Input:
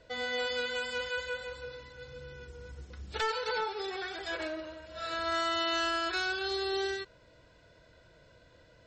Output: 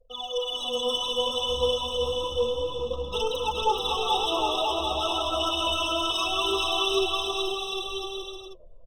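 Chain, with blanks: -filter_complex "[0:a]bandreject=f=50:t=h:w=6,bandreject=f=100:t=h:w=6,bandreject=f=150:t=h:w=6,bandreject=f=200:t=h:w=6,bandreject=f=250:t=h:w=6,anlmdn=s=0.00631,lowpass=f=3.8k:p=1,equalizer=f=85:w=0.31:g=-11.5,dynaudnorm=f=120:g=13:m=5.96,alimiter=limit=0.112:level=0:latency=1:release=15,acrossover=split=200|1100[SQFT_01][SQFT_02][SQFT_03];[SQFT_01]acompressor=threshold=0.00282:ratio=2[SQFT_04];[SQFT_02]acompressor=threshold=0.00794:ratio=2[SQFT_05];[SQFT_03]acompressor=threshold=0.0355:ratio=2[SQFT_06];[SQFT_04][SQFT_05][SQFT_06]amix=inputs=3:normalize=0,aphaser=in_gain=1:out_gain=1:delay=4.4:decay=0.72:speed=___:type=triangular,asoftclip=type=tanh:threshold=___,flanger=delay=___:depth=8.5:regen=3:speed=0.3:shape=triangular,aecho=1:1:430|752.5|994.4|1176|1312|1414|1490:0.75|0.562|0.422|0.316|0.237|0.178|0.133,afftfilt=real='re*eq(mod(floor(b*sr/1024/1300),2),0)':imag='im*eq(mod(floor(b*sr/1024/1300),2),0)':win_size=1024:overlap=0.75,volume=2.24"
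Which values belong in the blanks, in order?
0.61, 0.0708, 3.8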